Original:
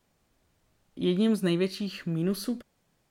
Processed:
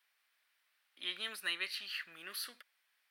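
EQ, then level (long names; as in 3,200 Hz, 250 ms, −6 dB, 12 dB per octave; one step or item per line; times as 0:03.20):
high-pass with resonance 1,800 Hz, resonance Q 1.5
parametric band 6,900 Hz −11.5 dB 0.53 octaves
−1.0 dB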